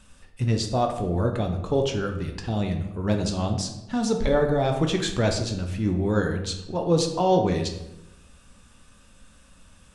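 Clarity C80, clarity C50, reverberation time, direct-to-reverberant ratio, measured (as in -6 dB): 10.0 dB, 7.0 dB, 0.90 s, 3.5 dB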